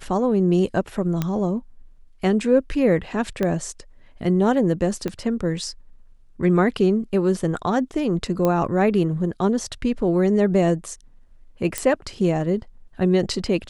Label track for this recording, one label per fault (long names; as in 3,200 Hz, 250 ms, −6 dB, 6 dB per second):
1.220000	1.220000	click −10 dBFS
3.430000	3.430000	click −11 dBFS
5.080000	5.080000	click −14 dBFS
8.450000	8.450000	click −9 dBFS
11.780000	11.780000	click −8 dBFS